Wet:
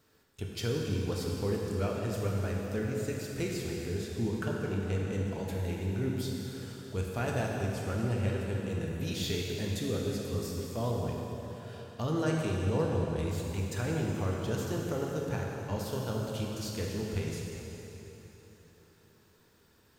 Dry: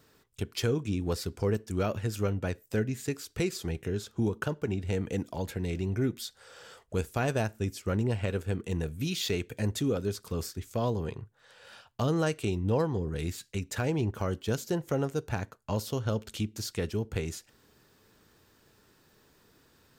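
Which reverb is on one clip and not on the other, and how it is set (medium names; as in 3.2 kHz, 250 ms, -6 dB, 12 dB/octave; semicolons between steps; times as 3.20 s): plate-style reverb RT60 3.7 s, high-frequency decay 0.9×, DRR -2 dB; trim -6 dB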